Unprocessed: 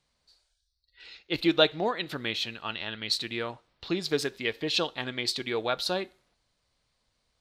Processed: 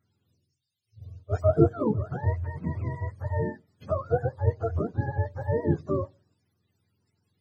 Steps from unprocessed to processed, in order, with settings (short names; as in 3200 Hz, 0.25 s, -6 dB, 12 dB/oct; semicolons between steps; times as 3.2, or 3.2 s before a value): spectrum mirrored in octaves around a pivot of 460 Hz; gain +4 dB